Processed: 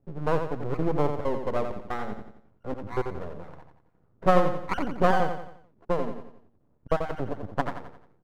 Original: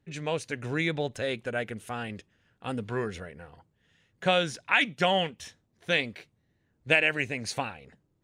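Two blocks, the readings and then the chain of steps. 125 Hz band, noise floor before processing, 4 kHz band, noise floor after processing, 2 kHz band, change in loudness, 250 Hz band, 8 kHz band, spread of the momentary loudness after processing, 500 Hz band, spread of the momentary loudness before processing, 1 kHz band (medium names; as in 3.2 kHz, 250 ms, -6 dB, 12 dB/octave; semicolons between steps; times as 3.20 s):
+3.0 dB, -73 dBFS, -14.5 dB, -65 dBFS, -9.5 dB, -0.5 dB, +3.0 dB, under -10 dB, 19 LU, +3.5 dB, 17 LU, +4.5 dB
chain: random holes in the spectrogram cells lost 26%; steep low-pass 1.3 kHz 72 dB/octave; half-wave rectifier; feedback delay 88 ms, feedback 43%, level -7 dB; trim +8.5 dB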